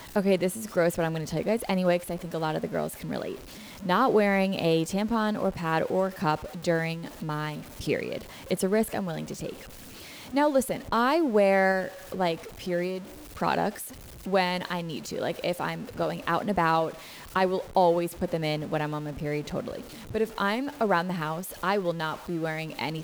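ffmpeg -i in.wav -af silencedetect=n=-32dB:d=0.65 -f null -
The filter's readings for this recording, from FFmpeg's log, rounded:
silence_start: 9.52
silence_end: 10.34 | silence_duration: 0.81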